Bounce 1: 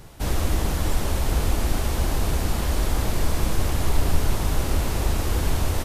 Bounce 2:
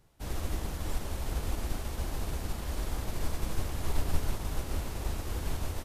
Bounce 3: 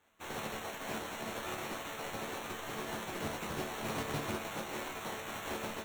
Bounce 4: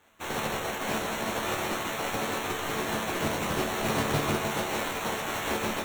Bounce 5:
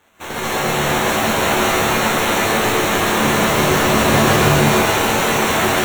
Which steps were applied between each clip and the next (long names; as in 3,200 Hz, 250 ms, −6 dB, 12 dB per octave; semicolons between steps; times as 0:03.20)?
expander for the loud parts 1.5 to 1, over −39 dBFS; level −7 dB
gate on every frequency bin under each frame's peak −20 dB weak; decimation without filtering 9×; resonators tuned to a chord D2 major, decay 0.27 s; level +13.5 dB
echo with a time of its own for lows and highs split 1,800 Hz, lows 151 ms, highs 601 ms, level −8 dB; level +9 dB
dense smooth reverb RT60 4.3 s, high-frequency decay 0.95×, pre-delay 110 ms, DRR −9 dB; level +5.5 dB